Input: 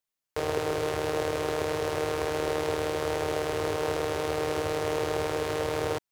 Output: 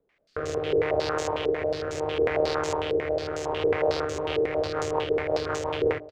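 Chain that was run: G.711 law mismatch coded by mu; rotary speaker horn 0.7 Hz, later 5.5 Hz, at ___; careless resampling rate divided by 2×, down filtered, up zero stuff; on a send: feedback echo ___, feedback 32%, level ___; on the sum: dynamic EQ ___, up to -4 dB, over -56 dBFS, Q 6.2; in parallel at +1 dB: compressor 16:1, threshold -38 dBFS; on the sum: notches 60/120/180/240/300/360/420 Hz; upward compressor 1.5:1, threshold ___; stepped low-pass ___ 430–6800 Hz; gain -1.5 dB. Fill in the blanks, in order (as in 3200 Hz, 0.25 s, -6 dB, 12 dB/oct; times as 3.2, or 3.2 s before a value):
3.81, 0.486 s, -20 dB, 180 Hz, -36 dBFS, 11 Hz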